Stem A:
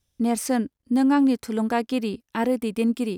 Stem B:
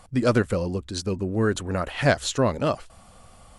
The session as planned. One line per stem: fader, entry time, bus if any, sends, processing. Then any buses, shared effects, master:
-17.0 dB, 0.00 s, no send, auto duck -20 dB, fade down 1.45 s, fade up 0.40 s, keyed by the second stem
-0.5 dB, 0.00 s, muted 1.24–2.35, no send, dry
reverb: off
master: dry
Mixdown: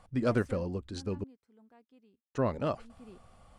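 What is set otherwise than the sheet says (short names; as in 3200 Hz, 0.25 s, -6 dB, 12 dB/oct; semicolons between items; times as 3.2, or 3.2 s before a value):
stem B -0.5 dB -> -7.5 dB; master: extra high shelf 4600 Hz -11 dB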